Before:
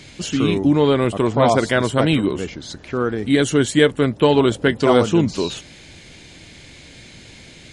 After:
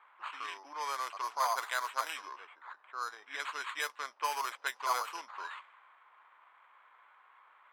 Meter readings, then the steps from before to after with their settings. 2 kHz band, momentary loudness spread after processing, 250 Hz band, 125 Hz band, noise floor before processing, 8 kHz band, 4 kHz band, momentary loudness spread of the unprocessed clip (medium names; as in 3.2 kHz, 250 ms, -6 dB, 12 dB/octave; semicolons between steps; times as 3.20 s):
-13.0 dB, 12 LU, under -40 dB, under -40 dB, -43 dBFS, -13.5 dB, -17.0 dB, 10 LU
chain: sample-rate reducer 5.5 kHz, jitter 0%; ladder high-pass 930 Hz, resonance 60%; level-controlled noise filter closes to 1.2 kHz, open at -25.5 dBFS; trim -5.5 dB